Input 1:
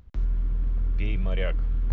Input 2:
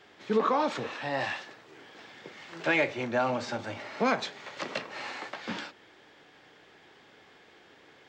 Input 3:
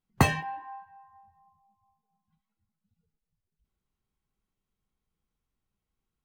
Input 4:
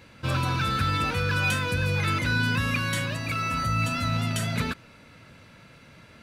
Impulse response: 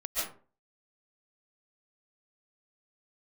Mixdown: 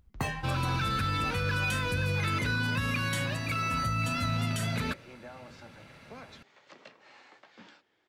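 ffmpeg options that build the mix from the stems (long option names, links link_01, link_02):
-filter_complex "[0:a]acompressor=threshold=-33dB:ratio=5,volume=-11.5dB,asplit=2[link_01][link_02];[1:a]acompressor=threshold=-26dB:ratio=6,adelay=2100,volume=-17dB[link_03];[2:a]volume=2.5dB[link_04];[3:a]adelay=200,volume=-2.5dB[link_05];[link_02]apad=whole_len=275280[link_06];[link_04][link_06]sidechaincompress=threshold=-51dB:ratio=8:attack=16:release=390[link_07];[link_01][link_03][link_07][link_05]amix=inputs=4:normalize=0,alimiter=limit=-20.5dB:level=0:latency=1:release=52"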